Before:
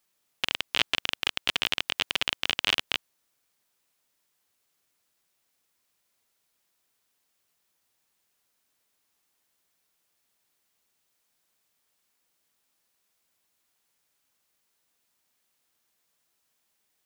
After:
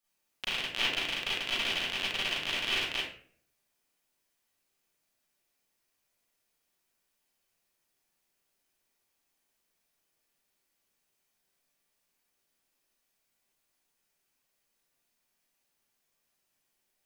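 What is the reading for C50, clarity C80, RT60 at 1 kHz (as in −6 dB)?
0.0 dB, 5.0 dB, 0.45 s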